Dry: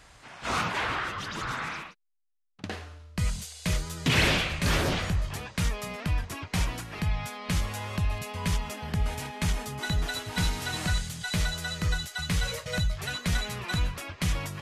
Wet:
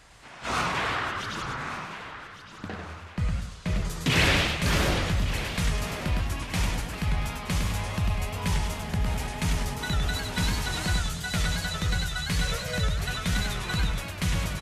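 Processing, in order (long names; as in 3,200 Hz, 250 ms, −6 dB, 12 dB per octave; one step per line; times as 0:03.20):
0:01.43–0:03.85: low-pass filter 1,700 Hz 6 dB per octave
repeating echo 1,160 ms, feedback 41%, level −12 dB
feedback echo with a swinging delay time 102 ms, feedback 37%, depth 200 cents, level −4 dB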